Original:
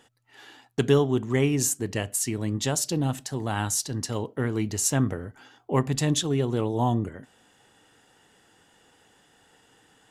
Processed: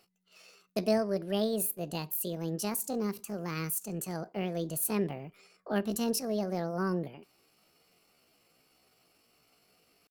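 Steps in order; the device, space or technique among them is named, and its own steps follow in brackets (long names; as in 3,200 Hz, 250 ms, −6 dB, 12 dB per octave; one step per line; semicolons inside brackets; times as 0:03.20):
parametric band 820 Hz −5 dB 1.8 octaves
chipmunk voice (pitch shifter +7.5 semitones)
level −6 dB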